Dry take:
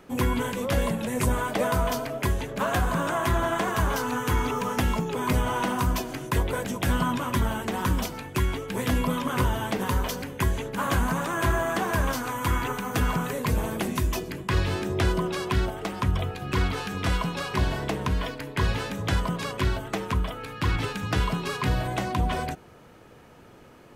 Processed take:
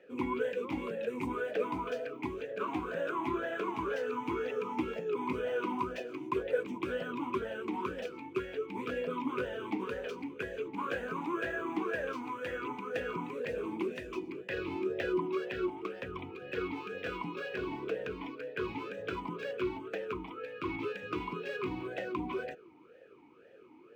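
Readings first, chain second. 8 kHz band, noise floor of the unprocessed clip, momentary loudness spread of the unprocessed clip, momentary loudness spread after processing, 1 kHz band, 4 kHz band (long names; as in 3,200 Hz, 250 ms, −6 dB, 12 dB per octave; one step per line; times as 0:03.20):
below −25 dB, −50 dBFS, 4 LU, 6 LU, −10.0 dB, −14.5 dB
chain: bad sample-rate conversion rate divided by 2×, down filtered, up zero stuff
formant filter swept between two vowels e-u 2 Hz
level +4 dB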